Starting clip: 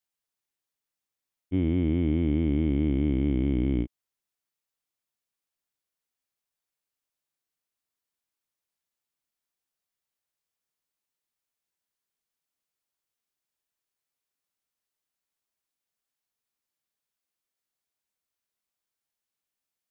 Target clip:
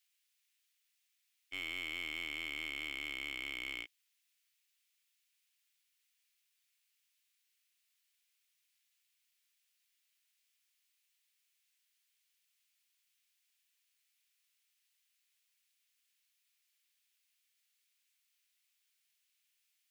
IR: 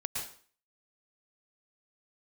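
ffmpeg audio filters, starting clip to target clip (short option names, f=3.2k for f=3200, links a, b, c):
-af "highpass=f=2.4k:t=q:w=1.7,aeval=exprs='0.0224*(cos(1*acos(clip(val(0)/0.0224,-1,1)))-cos(1*PI/2))+0.00251*(cos(5*acos(clip(val(0)/0.0224,-1,1)))-cos(5*PI/2))+0.001*(cos(8*acos(clip(val(0)/0.0224,-1,1)))-cos(8*PI/2))':c=same,volume=4dB"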